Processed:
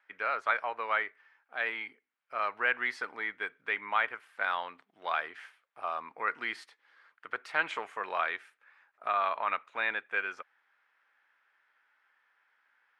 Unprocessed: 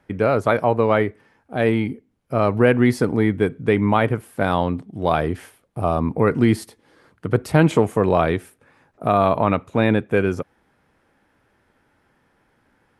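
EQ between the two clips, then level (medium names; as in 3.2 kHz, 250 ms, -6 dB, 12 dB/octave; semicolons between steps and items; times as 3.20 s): ladder band-pass 2 kHz, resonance 25%; +6.5 dB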